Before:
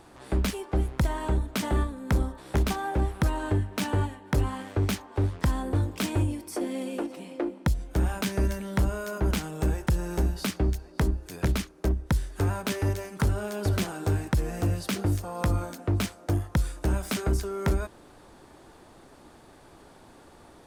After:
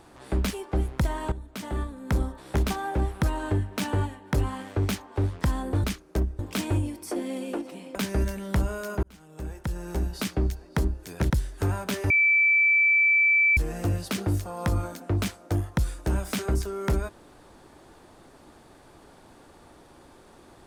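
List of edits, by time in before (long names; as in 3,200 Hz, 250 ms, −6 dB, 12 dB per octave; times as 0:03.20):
0:01.32–0:02.22: fade in, from −15 dB
0:07.40–0:08.18: remove
0:09.26–0:10.54: fade in linear
0:11.53–0:12.08: move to 0:05.84
0:12.88–0:14.35: beep over 2,320 Hz −17 dBFS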